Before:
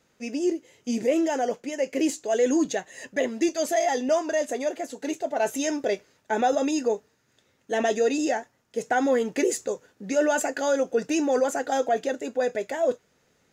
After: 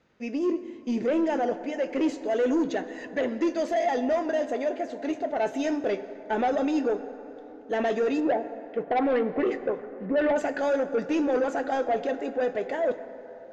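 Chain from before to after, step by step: 8.19–10.35 s: LFO low-pass sine 1.4 Hz -> 5.3 Hz 550–3000 Hz; saturation -20.5 dBFS, distortion -13 dB; distance through air 200 m; plate-style reverb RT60 3.6 s, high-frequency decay 0.4×, DRR 11 dB; trim +1.5 dB

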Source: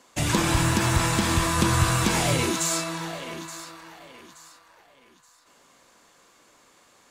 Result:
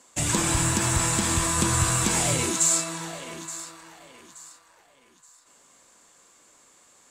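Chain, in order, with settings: peaking EQ 7.8 kHz +12 dB 0.53 oct; trim -3 dB

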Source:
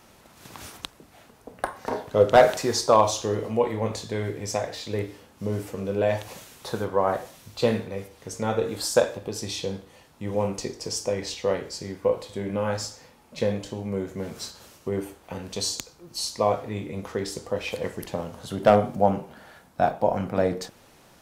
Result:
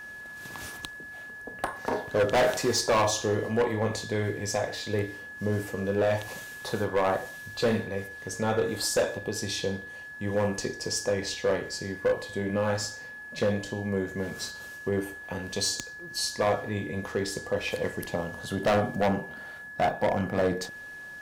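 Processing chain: hard clipper -19.5 dBFS, distortion -7 dB; whistle 1.7 kHz -40 dBFS

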